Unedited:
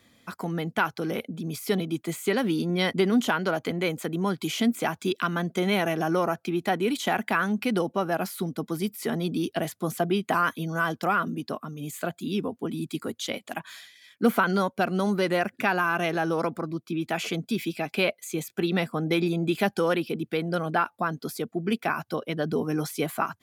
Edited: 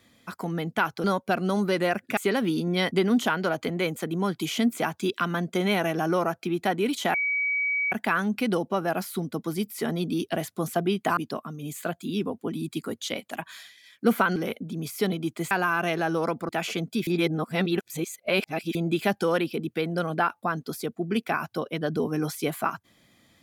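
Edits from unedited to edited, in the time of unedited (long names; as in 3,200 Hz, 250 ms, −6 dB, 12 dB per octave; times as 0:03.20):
0:01.04–0:02.19: swap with 0:14.54–0:15.67
0:07.16: insert tone 2,270 Hz −23 dBFS 0.78 s
0:10.41–0:11.35: remove
0:16.65–0:17.05: remove
0:17.63–0:19.31: reverse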